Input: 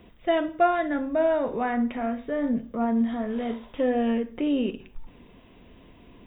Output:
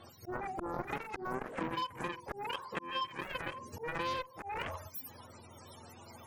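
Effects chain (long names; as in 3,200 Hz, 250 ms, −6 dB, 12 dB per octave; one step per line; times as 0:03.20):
frequency axis turned over on the octave scale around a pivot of 490 Hz
parametric band 110 Hz −6 dB 0.84 octaves
volume swells 317 ms
harmonic generator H 7 −12 dB, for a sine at −16.5 dBFS
downward compressor 5 to 1, threshold −40 dBFS, peak gain reduction 17 dB
level +5 dB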